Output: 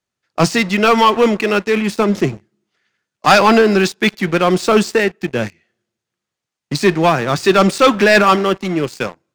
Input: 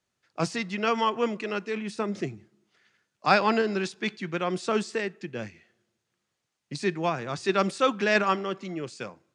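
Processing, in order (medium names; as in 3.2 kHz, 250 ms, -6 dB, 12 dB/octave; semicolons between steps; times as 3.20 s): waveshaping leveller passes 3; trim +4.5 dB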